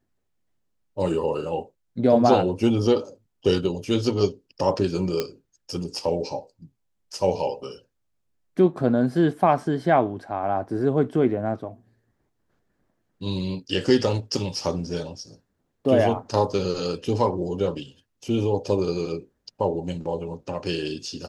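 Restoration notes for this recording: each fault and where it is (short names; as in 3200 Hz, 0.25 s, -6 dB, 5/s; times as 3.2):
5.2 pop -11 dBFS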